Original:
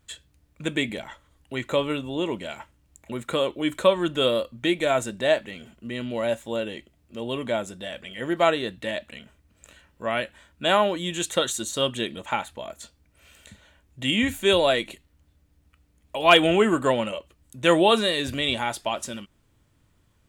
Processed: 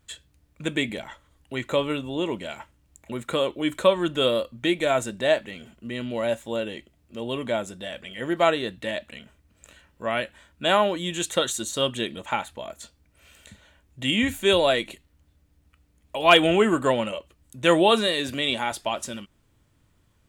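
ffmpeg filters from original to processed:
-filter_complex "[0:a]asettb=1/sr,asplit=3[a][b][c];[a]atrim=end=18.074[d];[b]atrim=start=18.07:end=18.72,asetpts=PTS-STARTPTS,afade=t=in:d=0.004:c=qsin,afade=t=out:st=0.646:d=0.004:c=qsin,highpass=140[e];[c]atrim=start=18.716[f];[d][e]acrossfade=d=0.004:c1=hsin:c2=qsin[g];[g][f]acrossfade=d=0.004:c1=qsin:c2=hsin"

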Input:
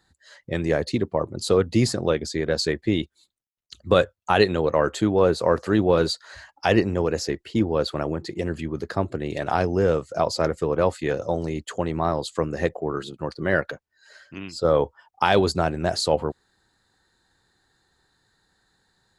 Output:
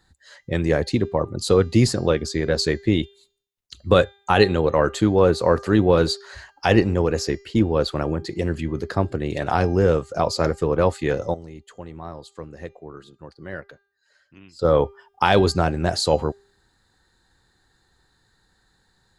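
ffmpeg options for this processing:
-filter_complex "[0:a]asplit=3[a][b][c];[a]atrim=end=11.34,asetpts=PTS-STARTPTS,afade=t=out:st=11.17:d=0.17:c=log:silence=0.188365[d];[b]atrim=start=11.34:end=14.59,asetpts=PTS-STARTPTS,volume=-14.5dB[e];[c]atrim=start=14.59,asetpts=PTS-STARTPTS,afade=t=in:d=0.17:c=log:silence=0.188365[f];[d][e][f]concat=n=3:v=0:a=1,lowshelf=f=75:g=9.5,bandreject=f=640:w=19,bandreject=f=399.6:t=h:w=4,bandreject=f=799.2:t=h:w=4,bandreject=f=1.1988k:t=h:w=4,bandreject=f=1.5984k:t=h:w=4,bandreject=f=1.998k:t=h:w=4,bandreject=f=2.3976k:t=h:w=4,bandreject=f=2.7972k:t=h:w=4,bandreject=f=3.1968k:t=h:w=4,bandreject=f=3.5964k:t=h:w=4,bandreject=f=3.996k:t=h:w=4,bandreject=f=4.3956k:t=h:w=4,bandreject=f=4.7952k:t=h:w=4,bandreject=f=5.1948k:t=h:w=4,bandreject=f=5.5944k:t=h:w=4,bandreject=f=5.994k:t=h:w=4,bandreject=f=6.3936k:t=h:w=4,bandreject=f=6.7932k:t=h:w=4,bandreject=f=7.1928k:t=h:w=4,volume=2dB"

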